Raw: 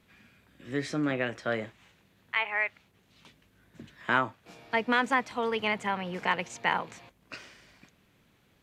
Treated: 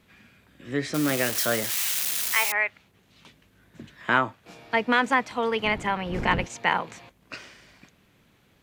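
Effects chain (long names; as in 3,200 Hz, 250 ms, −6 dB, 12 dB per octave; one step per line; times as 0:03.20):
0:00.94–0:02.52: spike at every zero crossing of −20.5 dBFS
0:05.64–0:06.45: wind on the microphone 240 Hz −31 dBFS
level +4 dB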